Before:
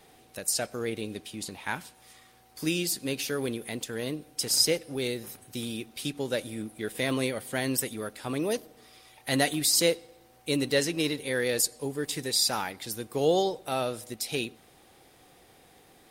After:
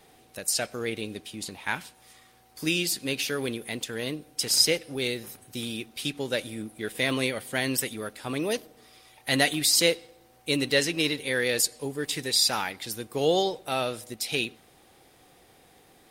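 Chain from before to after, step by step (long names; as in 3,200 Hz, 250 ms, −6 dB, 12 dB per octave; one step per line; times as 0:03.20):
dynamic equaliser 2,700 Hz, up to +6 dB, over −44 dBFS, Q 0.74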